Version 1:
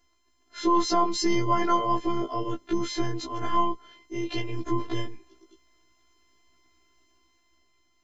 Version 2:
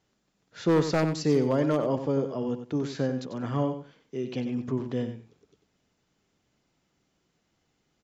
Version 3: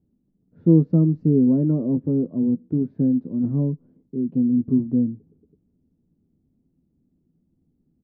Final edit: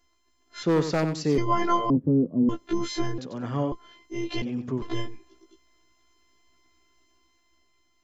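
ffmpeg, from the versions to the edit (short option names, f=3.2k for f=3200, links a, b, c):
-filter_complex "[1:a]asplit=3[a][b][c];[0:a]asplit=5[d][e][f][g][h];[d]atrim=end=0.632[i];[a]atrim=start=0.628:end=1.382[j];[e]atrim=start=1.378:end=1.902[k];[2:a]atrim=start=1.898:end=2.492[l];[f]atrim=start=2.488:end=3.182[m];[b]atrim=start=3.178:end=3.722[n];[g]atrim=start=3.718:end=4.422[o];[c]atrim=start=4.418:end=4.822[p];[h]atrim=start=4.818[q];[i][j]acrossfade=d=0.004:c1=hsin:c2=hsin[r];[r][k]acrossfade=d=0.004:c1=hsin:c2=hsin[s];[s][l]acrossfade=d=0.004:c1=hsin:c2=hsin[t];[t][m]acrossfade=d=0.004:c1=hsin:c2=hsin[u];[u][n]acrossfade=d=0.004:c1=hsin:c2=hsin[v];[v][o]acrossfade=d=0.004:c1=hsin:c2=hsin[w];[w][p]acrossfade=d=0.004:c1=hsin:c2=hsin[x];[x][q]acrossfade=d=0.004:c1=hsin:c2=hsin"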